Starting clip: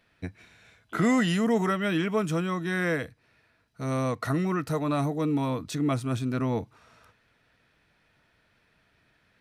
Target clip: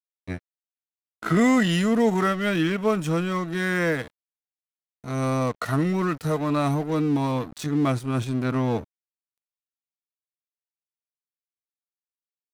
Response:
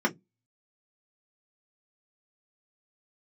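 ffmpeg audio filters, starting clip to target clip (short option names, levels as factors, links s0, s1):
-af "atempo=0.75,aeval=exprs='sgn(val(0))*max(abs(val(0))-0.00794,0)':c=same,volume=1.68"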